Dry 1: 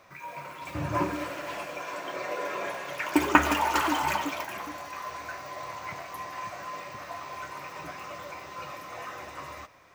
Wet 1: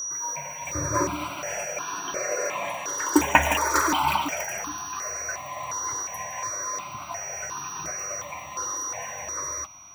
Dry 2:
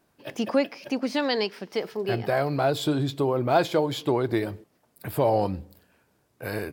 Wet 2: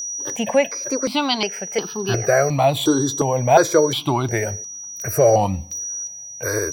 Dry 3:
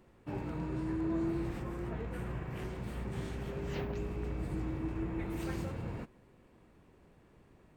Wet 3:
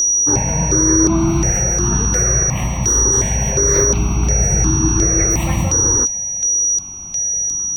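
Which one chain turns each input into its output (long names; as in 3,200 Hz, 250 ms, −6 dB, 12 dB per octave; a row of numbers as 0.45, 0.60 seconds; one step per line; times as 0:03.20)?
dynamic equaliser 6,300 Hz, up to +4 dB, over −49 dBFS, Q 1
steady tone 5,800 Hz −33 dBFS
step-sequenced phaser 2.8 Hz 660–2,100 Hz
normalise the peak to −2 dBFS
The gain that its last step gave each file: +6.0, +9.5, +23.0 decibels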